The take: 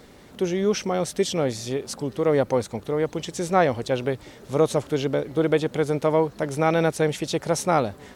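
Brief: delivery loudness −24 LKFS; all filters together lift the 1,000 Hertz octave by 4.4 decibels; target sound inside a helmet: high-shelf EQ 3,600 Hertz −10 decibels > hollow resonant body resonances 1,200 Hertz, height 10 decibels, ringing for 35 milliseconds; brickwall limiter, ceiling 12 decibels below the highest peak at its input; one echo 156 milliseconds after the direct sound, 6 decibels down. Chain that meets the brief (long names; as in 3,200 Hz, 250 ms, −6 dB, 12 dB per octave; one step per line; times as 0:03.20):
parametric band 1,000 Hz +7 dB
brickwall limiter −14 dBFS
high-shelf EQ 3,600 Hz −10 dB
single-tap delay 156 ms −6 dB
hollow resonant body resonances 1,200 Hz, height 10 dB, ringing for 35 ms
level +1.5 dB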